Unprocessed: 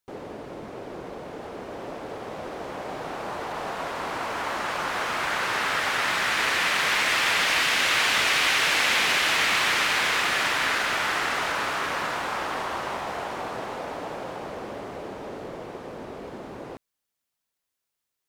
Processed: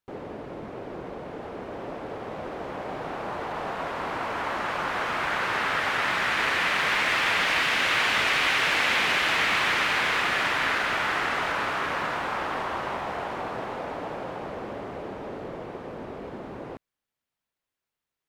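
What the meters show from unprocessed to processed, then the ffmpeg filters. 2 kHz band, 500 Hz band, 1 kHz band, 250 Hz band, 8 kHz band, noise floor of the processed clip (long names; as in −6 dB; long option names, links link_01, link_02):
−0.5 dB, 0.0 dB, 0.0 dB, +1.0 dB, −8.0 dB, below −85 dBFS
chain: -af "bass=frequency=250:gain=2,treble=frequency=4000:gain=-9"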